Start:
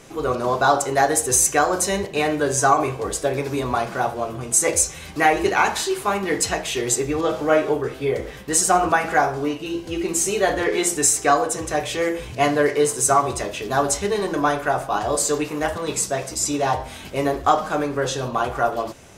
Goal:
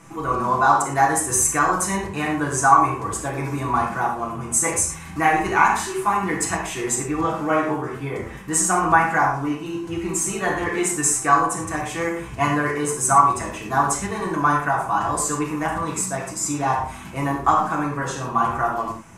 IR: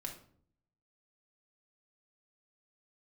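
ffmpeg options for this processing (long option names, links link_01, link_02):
-filter_complex "[0:a]equalizer=frequency=125:width_type=o:width=1:gain=5,equalizer=frequency=250:width_type=o:width=1:gain=8,equalizer=frequency=500:width_type=o:width=1:gain=-8,equalizer=frequency=1000:width_type=o:width=1:gain=10,equalizer=frequency=2000:width_type=o:width=1:gain=4,equalizer=frequency=4000:width_type=o:width=1:gain=-7,equalizer=frequency=8000:width_type=o:width=1:gain=5[link_01];[1:a]atrim=start_sample=2205,atrim=end_sample=3528,asetrate=27783,aresample=44100[link_02];[link_01][link_02]afir=irnorm=-1:irlink=0,volume=-5dB"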